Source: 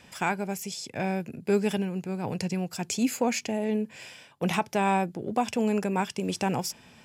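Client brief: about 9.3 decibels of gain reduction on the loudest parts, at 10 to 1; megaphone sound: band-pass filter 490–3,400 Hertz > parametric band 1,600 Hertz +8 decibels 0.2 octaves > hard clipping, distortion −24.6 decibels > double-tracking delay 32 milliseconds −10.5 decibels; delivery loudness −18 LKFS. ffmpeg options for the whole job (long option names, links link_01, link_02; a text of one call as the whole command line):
ffmpeg -i in.wav -filter_complex "[0:a]acompressor=threshold=-29dB:ratio=10,highpass=490,lowpass=3400,equalizer=frequency=1600:width_type=o:width=0.2:gain=8,asoftclip=type=hard:threshold=-25dB,asplit=2[link_01][link_02];[link_02]adelay=32,volume=-10.5dB[link_03];[link_01][link_03]amix=inputs=2:normalize=0,volume=21.5dB" out.wav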